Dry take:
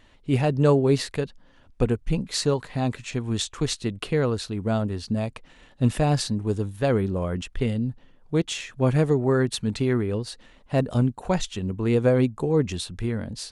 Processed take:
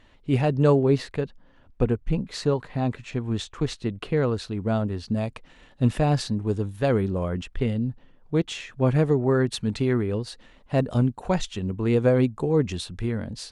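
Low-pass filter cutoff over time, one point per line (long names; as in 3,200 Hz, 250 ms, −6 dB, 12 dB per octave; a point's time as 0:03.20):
low-pass filter 6 dB per octave
4,800 Hz
from 0:00.83 2,100 Hz
from 0:04.17 3,700 Hz
from 0:05.12 7,200 Hz
from 0:05.84 4,200 Hz
from 0:06.69 8,100 Hz
from 0:07.29 3,400 Hz
from 0:09.46 6,200 Hz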